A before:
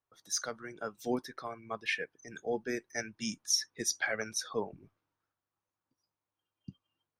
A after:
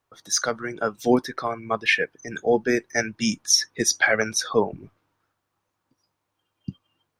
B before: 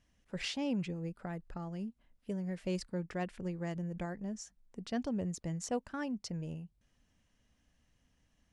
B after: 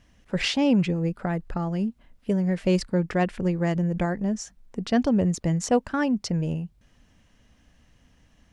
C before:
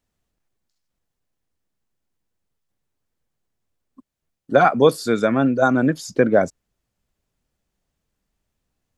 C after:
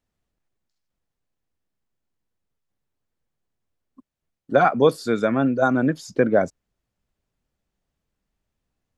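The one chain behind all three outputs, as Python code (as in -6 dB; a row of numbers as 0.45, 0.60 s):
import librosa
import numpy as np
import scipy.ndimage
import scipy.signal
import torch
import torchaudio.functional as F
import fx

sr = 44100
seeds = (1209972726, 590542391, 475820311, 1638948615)

y = fx.high_shelf(x, sr, hz=5600.0, db=-6.5)
y = y * 10.0 ** (-26 / 20.0) / np.sqrt(np.mean(np.square(y)))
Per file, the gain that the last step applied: +14.0, +14.0, -2.0 dB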